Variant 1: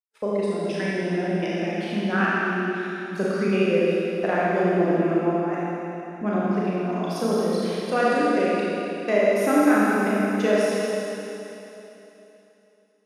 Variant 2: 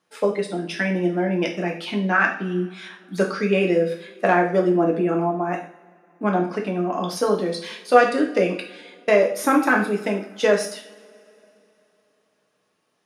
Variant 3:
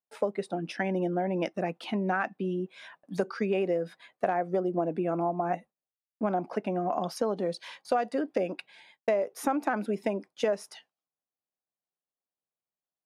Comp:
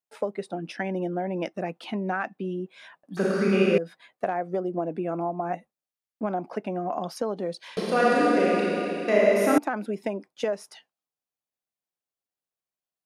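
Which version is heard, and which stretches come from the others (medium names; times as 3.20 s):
3
3.17–3.78 s: from 1
7.77–9.58 s: from 1
not used: 2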